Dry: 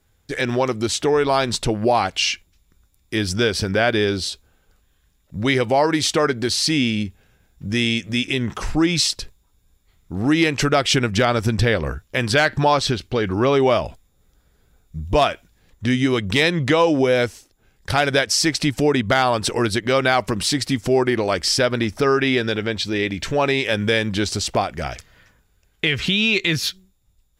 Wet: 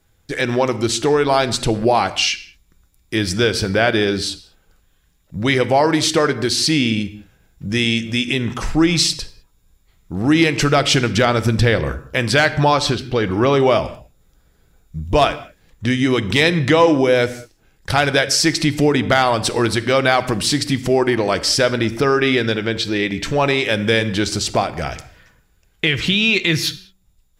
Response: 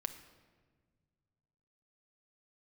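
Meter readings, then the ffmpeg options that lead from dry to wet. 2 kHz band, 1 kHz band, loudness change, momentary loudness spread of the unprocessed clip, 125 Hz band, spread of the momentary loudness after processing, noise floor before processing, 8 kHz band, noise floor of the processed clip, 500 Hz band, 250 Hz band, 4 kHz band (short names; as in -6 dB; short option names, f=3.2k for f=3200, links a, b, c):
+2.5 dB, +2.5 dB, +2.5 dB, 8 LU, +3.0 dB, 9 LU, -63 dBFS, +2.5 dB, -59 dBFS, +2.5 dB, +2.5 dB, +2.5 dB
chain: -filter_complex "[0:a]asplit=2[a][b];[1:a]atrim=start_sample=2205,afade=t=out:st=0.26:d=0.01,atrim=end_sample=11907[c];[b][c]afir=irnorm=-1:irlink=0,volume=8.5dB[d];[a][d]amix=inputs=2:normalize=0,volume=-8dB"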